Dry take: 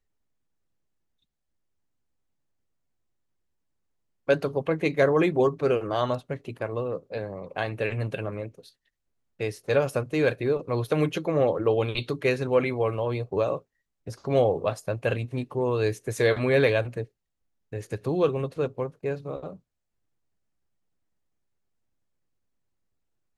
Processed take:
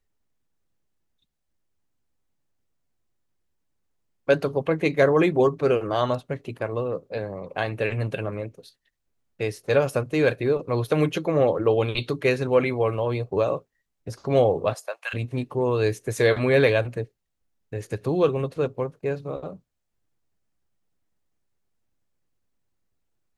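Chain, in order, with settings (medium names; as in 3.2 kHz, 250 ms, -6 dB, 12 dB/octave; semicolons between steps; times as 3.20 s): 14.73–15.13 s: high-pass 350 Hz -> 1.3 kHz 24 dB/octave; trim +2.5 dB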